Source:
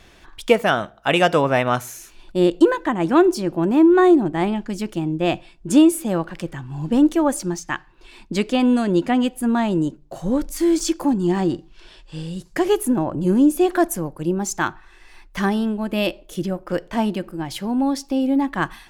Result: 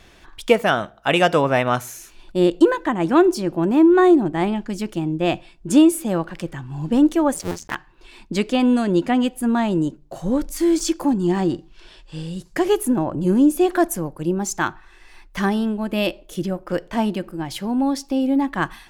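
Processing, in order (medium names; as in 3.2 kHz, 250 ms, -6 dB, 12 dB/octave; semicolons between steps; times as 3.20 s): 7.34–7.75 s: cycle switcher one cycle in 2, muted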